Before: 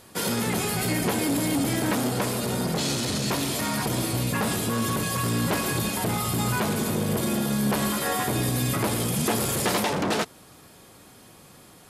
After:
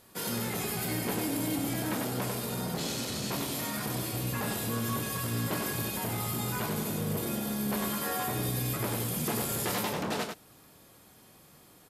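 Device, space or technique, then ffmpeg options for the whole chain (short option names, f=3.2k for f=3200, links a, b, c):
slapback doubling: -filter_complex "[0:a]asplit=3[a][b][c];[b]adelay=26,volume=-8dB[d];[c]adelay=96,volume=-4.5dB[e];[a][d][e]amix=inputs=3:normalize=0,equalizer=f=13k:w=4.7:g=10.5,volume=-9dB"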